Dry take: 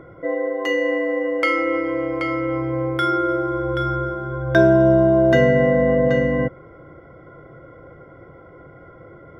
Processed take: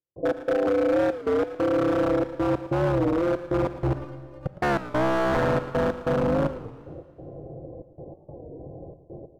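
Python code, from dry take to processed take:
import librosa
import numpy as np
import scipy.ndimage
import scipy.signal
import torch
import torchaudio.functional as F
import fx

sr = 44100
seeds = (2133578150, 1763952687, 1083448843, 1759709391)

p1 = scipy.signal.sosfilt(scipy.signal.butter(12, 860.0, 'lowpass', fs=sr, output='sos'), x)
p2 = fx.low_shelf(p1, sr, hz=98.0, db=2.5)
p3 = fx.over_compress(p2, sr, threshold_db=-23.0, ratio=-0.5)
p4 = p2 + (p3 * librosa.db_to_amplitude(0.5))
p5 = fx.step_gate(p4, sr, bpm=188, pattern='..xx..xxxxxxxx', floor_db=-60.0, edge_ms=4.5)
p6 = 10.0 ** (-12.5 / 20.0) * (np.abs((p5 / 10.0 ** (-12.5 / 20.0) + 3.0) % 4.0 - 2.0) - 1.0)
p7 = fx.stiff_resonator(p6, sr, f0_hz=290.0, decay_s=0.2, stiffness=0.002, at=(3.93, 4.46))
p8 = fx.echo_feedback(p7, sr, ms=113, feedback_pct=44, wet_db=-14.0)
p9 = fx.rev_schroeder(p8, sr, rt60_s=1.9, comb_ms=30, drr_db=13.5)
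p10 = fx.record_warp(p9, sr, rpm=33.33, depth_cents=160.0)
y = p10 * librosa.db_to_amplitude(-5.0)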